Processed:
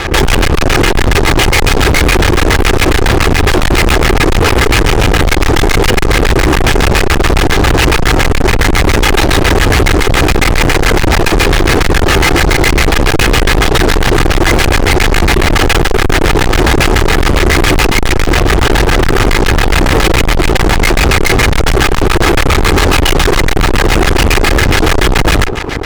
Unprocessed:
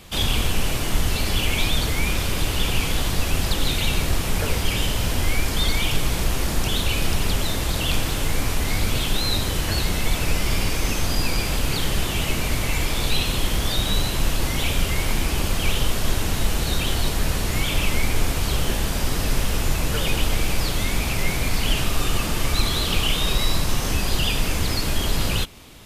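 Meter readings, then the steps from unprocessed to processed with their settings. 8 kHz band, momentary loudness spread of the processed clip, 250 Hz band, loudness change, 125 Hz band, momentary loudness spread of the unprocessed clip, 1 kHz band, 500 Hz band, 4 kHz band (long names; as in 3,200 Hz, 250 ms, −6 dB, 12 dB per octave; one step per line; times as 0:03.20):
+9.0 dB, 2 LU, +15.5 dB, +13.5 dB, +13.0 dB, 2 LU, +17.5 dB, +18.5 dB, +9.5 dB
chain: lower of the sound and its delayed copy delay 2.4 ms
auto-filter low-pass square 7.2 Hz 370–1,900 Hz
fuzz pedal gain 43 dB, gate −48 dBFS
level +6.5 dB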